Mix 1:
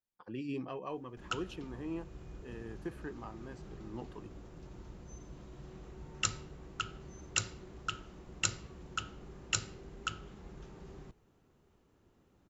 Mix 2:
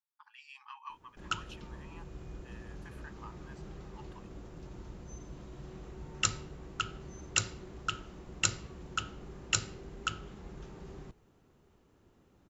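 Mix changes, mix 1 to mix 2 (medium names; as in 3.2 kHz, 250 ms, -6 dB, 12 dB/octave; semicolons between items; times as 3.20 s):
speech: add brick-wall FIR high-pass 800 Hz; background +3.0 dB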